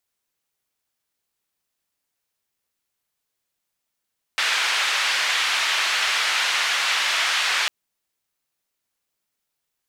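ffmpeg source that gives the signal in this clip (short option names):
-f lavfi -i "anoisesrc=c=white:d=3.3:r=44100:seed=1,highpass=f=1300,lowpass=f=3100,volume=-6.8dB"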